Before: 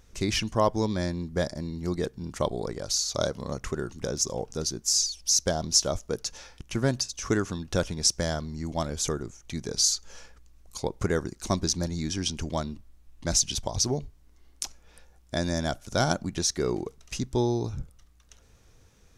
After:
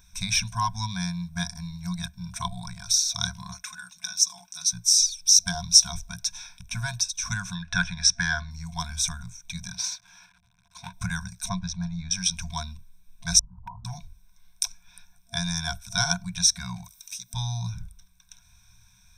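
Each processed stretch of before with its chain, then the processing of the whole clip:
0:03.51–0:04.73: high-pass filter 1,500 Hz 6 dB per octave + comb filter 4.7 ms, depth 59%
0:07.55–0:08.51: low-pass filter 5,000 Hz + parametric band 1,700 Hz +13.5 dB 0.59 octaves
0:09.72–0:10.93: log-companded quantiser 4 bits + high-pass filter 190 Hz 6 dB per octave + head-to-tape spacing loss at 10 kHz 20 dB
0:11.49–0:12.11: head-to-tape spacing loss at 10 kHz 25 dB + one half of a high-frequency compander decoder only
0:13.39–0:13.85: Chebyshev low-pass with heavy ripple 1,300 Hz, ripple 9 dB + gain into a clipping stage and back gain 27.5 dB
0:16.84–0:17.34: RIAA equalisation recording + downward compressor 2 to 1, threshold −48 dBFS + one half of a high-frequency compander encoder only
whole clip: high-shelf EQ 2,400 Hz +8 dB; brick-wall band-stop 230–680 Hz; EQ curve with evenly spaced ripples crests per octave 1.6, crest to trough 16 dB; level −4.5 dB

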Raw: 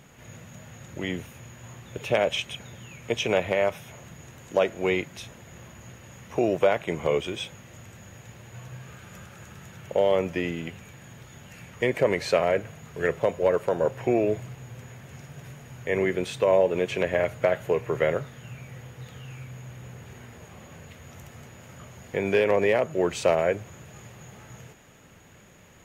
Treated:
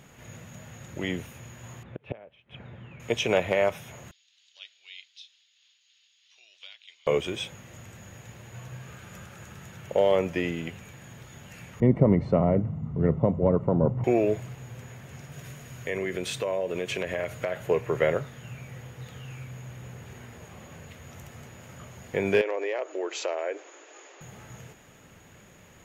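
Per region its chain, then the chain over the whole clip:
0:01.83–0:03.00: gate with flip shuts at −20 dBFS, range −24 dB + high-frequency loss of the air 470 metres
0:04.11–0:07.07: flat-topped band-pass 4,000 Hz, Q 2.1 + amplitude tremolo 3.2 Hz, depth 30%
0:11.80–0:14.04: Savitzky-Golay smoothing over 65 samples + low shelf with overshoot 320 Hz +11 dB, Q 1.5
0:15.32–0:17.56: high-shelf EQ 2,600 Hz +5 dB + downward compressor 3 to 1, threshold −27 dBFS + notch filter 850 Hz
0:22.41–0:24.21: downward compressor 2.5 to 1, threshold −29 dBFS + linear-phase brick-wall band-pass 280–7,700 Hz
whole clip: no processing

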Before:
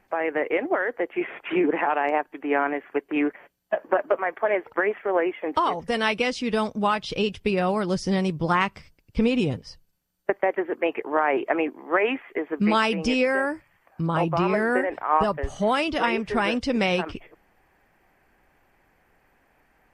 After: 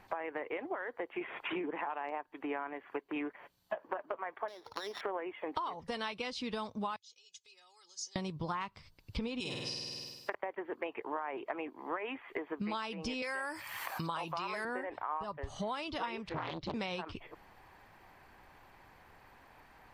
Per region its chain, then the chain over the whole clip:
0:04.48–0:05.01: samples sorted by size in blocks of 8 samples + low-pass filter 3,600 Hz 6 dB per octave + downward compressor 12 to 1, threshold −32 dBFS
0:06.96–0:08.16: comb filter 2.4 ms, depth 94% + downward compressor 12 to 1, threshold −27 dBFS + resonant band-pass 6,600 Hz, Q 8.6
0:09.40–0:10.35: spectral tilt +3.5 dB per octave + flutter between parallel walls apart 8.6 metres, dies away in 1.1 s
0:13.22–0:14.65: spectral tilt +4 dB per octave + envelope flattener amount 50%
0:16.29–0:16.74: ring modulation 80 Hz + high-frequency loss of the air 210 metres + highs frequency-modulated by the lows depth 0.67 ms
whole clip: graphic EQ with 15 bands 100 Hz +7 dB, 1,000 Hz +8 dB, 4,000 Hz +10 dB; downward compressor 6 to 1, threshold −38 dBFS; level +1 dB

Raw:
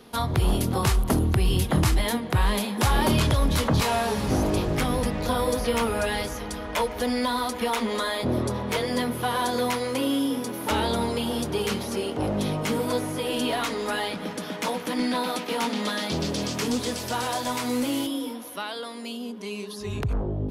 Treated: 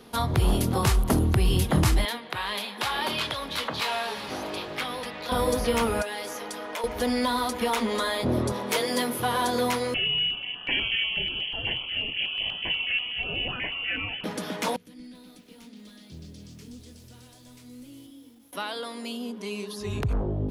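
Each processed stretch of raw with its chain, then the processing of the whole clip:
0:02.05–0:05.32: high-pass filter 1,200 Hz 6 dB per octave + high shelf with overshoot 5,100 Hz −7.5 dB, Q 1.5
0:06.02–0:06.84: high-pass filter 340 Hz + downward compressor 4 to 1, threshold −30 dBFS
0:08.52–0:09.20: high-pass filter 230 Hz + high-shelf EQ 4,600 Hz +7 dB
0:09.94–0:14.24: mains-hum notches 50/100/150/200/250/300/350/400/450 Hz + voice inversion scrambler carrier 3,200 Hz + notch on a step sequencer 8.2 Hz 1,000–2,200 Hz
0:14.76–0:18.53: guitar amp tone stack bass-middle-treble 10-0-1 + feedback echo at a low word length 282 ms, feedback 55%, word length 9 bits, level −11.5 dB
whole clip: no processing

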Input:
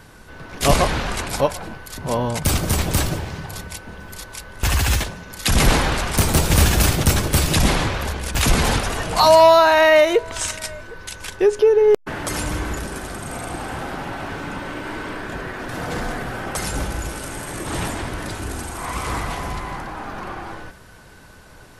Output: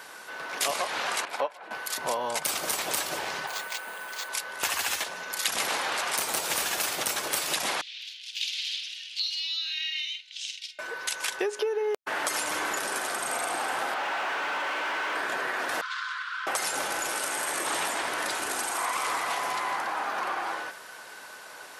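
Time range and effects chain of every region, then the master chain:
0:01.25–0:01.71: three-way crossover with the lows and the highs turned down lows −22 dB, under 160 Hz, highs −15 dB, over 3,500 Hz + expander for the loud parts, over −30 dBFS
0:03.47–0:04.29: low-shelf EQ 330 Hz −9.5 dB + bad sample-rate conversion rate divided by 4×, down filtered, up hold
0:07.81–0:10.79: Butterworth high-pass 3,000 Hz + high-frequency loss of the air 260 metres + double-tracking delay 48 ms −7.5 dB
0:13.94–0:15.15: transistor ladder low-pass 3,700 Hz, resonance 45% + mid-hump overdrive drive 31 dB, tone 1,200 Hz, clips at −23 dBFS
0:15.81–0:16.47: Chebyshev high-pass with heavy ripple 1,000 Hz, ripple 9 dB + high-frequency loss of the air 120 metres
whole clip: high-pass filter 640 Hz 12 dB per octave; downward compressor 10 to 1, threshold −30 dBFS; level +4.5 dB

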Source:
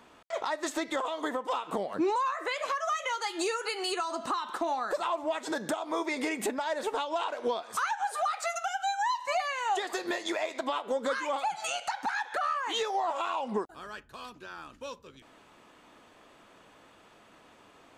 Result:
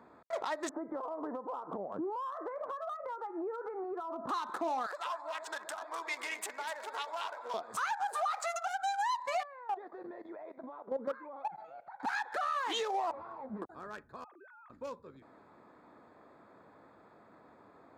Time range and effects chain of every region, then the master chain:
0:00.69–0:04.29: low-pass filter 1,300 Hz 24 dB per octave + downward compressor 4 to 1, threshold −35 dBFS
0:04.86–0:07.54: high-pass filter 1,200 Hz + delay that swaps between a low-pass and a high-pass 125 ms, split 890 Hz, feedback 71%, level −7 dB
0:08.13–0:08.67: high-pass filter 440 Hz 24 dB per octave + parametric band 1,000 Hz +9 dB 0.31 octaves
0:09.43–0:12.00: output level in coarse steps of 14 dB + head-to-tape spacing loss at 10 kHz 39 dB
0:13.11–0:13.62: hard clipping −37 dBFS + head-to-tape spacing loss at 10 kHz 30 dB + string-ensemble chorus
0:14.24–0:14.70: three sine waves on the formant tracks + downward compressor 8 to 1, threshold −51 dBFS
whole clip: adaptive Wiener filter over 15 samples; brickwall limiter −26.5 dBFS; high-pass filter 80 Hz

